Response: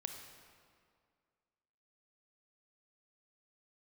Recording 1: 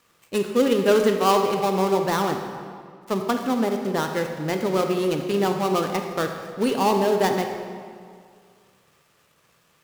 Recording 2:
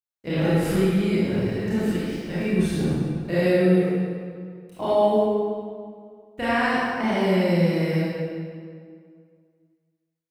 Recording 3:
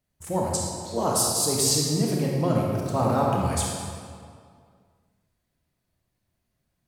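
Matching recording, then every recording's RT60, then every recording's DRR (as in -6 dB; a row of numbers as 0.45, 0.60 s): 1; 2.1, 2.1, 2.1 s; 4.5, -12.0, -2.5 dB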